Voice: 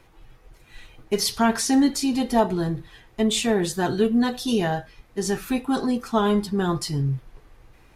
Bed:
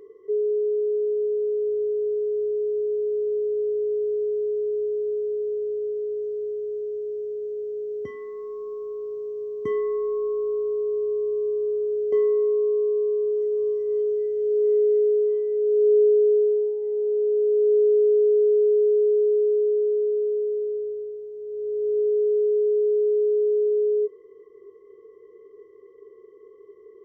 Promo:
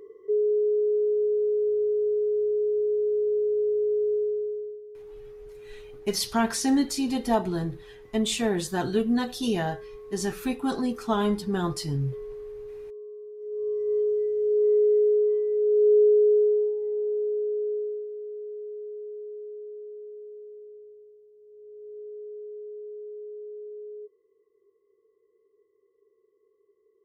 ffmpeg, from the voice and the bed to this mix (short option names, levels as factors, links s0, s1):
-filter_complex "[0:a]adelay=4950,volume=0.631[s0];[1:a]volume=7.08,afade=t=out:st=4.14:d=0.67:silence=0.125893,afade=t=in:st=13.38:d=0.51:silence=0.141254,afade=t=out:st=16.62:d=1.46:silence=0.133352[s1];[s0][s1]amix=inputs=2:normalize=0"